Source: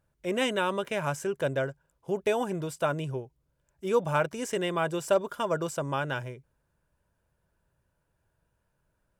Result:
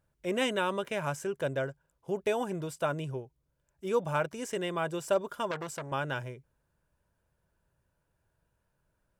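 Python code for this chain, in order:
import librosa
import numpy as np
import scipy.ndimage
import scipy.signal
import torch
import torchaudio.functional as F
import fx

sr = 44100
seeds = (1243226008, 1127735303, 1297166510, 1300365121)

y = fx.rider(x, sr, range_db=10, speed_s=2.0)
y = fx.transformer_sat(y, sr, knee_hz=2000.0, at=(5.51, 5.92))
y = F.gain(torch.from_numpy(y), -3.0).numpy()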